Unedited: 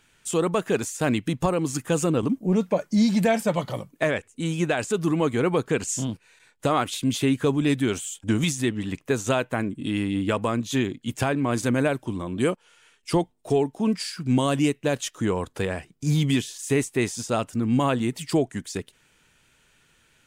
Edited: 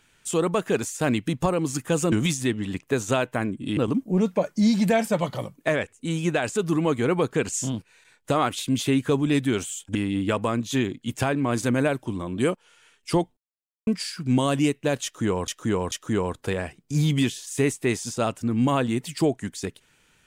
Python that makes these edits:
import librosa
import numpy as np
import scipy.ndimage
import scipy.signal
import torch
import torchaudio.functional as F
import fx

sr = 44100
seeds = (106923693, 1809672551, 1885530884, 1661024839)

y = fx.edit(x, sr, fx.move(start_s=8.3, length_s=1.65, to_s=2.12),
    fx.silence(start_s=13.37, length_s=0.5),
    fx.repeat(start_s=15.04, length_s=0.44, count=3), tone=tone)